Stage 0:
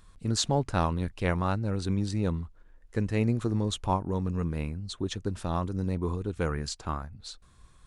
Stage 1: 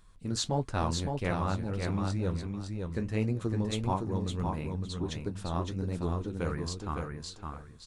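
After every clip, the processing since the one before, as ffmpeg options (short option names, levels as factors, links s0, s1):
-filter_complex "[0:a]flanger=delay=5.2:depth=9.4:regen=-52:speed=1.5:shape=triangular,asplit=2[s0][s1];[s1]aecho=0:1:561|1122|1683:0.596|0.119|0.0238[s2];[s0][s2]amix=inputs=2:normalize=0"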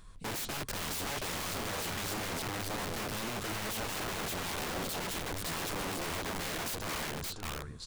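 -af "aeval=exprs='(tanh(35.5*val(0)+0.45)-tanh(0.45))/35.5':c=same,aeval=exprs='(mod(100*val(0)+1,2)-1)/100':c=same,volume=2.37"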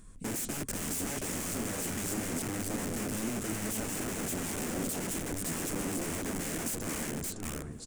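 -filter_complex "[0:a]equalizer=f=250:t=o:w=1:g=9,equalizer=f=1000:t=o:w=1:g=-6,equalizer=f=4000:t=o:w=1:g=-10,equalizer=f=8000:t=o:w=1:g=9,asplit=2[s0][s1];[s1]adelay=1050,volume=0.2,highshelf=f=4000:g=-23.6[s2];[s0][s2]amix=inputs=2:normalize=0"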